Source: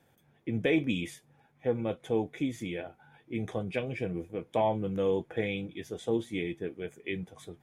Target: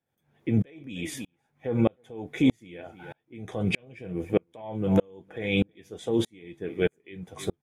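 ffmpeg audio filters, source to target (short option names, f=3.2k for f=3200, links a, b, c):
-filter_complex "[0:a]asplit=2[a][b];[b]adelay=309,volume=-22dB,highshelf=f=4k:g=-6.95[c];[a][c]amix=inputs=2:normalize=0,alimiter=level_in=24.5dB:limit=-1dB:release=50:level=0:latency=1,aeval=exprs='val(0)*pow(10,-38*if(lt(mod(-1.6*n/s,1),2*abs(-1.6)/1000),1-mod(-1.6*n/s,1)/(2*abs(-1.6)/1000),(mod(-1.6*n/s,1)-2*abs(-1.6)/1000)/(1-2*abs(-1.6)/1000))/20)':c=same,volume=-8dB"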